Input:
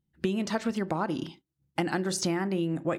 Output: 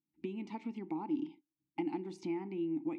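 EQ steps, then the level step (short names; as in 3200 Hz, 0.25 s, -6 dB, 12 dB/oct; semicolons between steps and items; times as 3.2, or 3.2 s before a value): vowel filter u; bell 1100 Hz -4.5 dB 1 oct; +2.0 dB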